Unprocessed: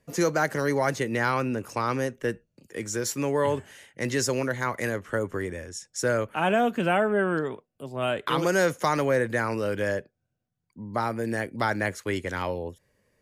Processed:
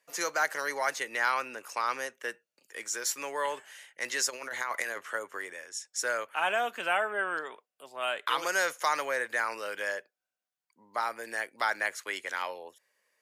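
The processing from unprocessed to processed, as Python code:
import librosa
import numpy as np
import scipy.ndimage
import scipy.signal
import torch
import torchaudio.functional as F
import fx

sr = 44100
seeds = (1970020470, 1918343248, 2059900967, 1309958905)

y = fx.over_compress(x, sr, threshold_db=-30.0, ratio=-0.5, at=(4.29, 5.13), fade=0.02)
y = scipy.signal.sosfilt(scipy.signal.butter(2, 910.0, 'highpass', fs=sr, output='sos'), y)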